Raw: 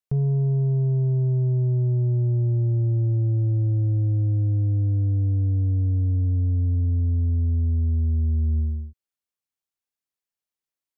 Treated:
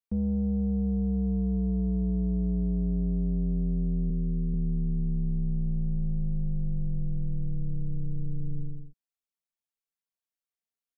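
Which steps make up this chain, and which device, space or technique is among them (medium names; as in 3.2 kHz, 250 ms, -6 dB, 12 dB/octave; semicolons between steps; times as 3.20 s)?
4.10–4.54 s: Chebyshev low-pass 550 Hz, order 5; ring-modulated robot voice (ring modulator 65 Hz; comb 4.4 ms, depth 74%); trim -5.5 dB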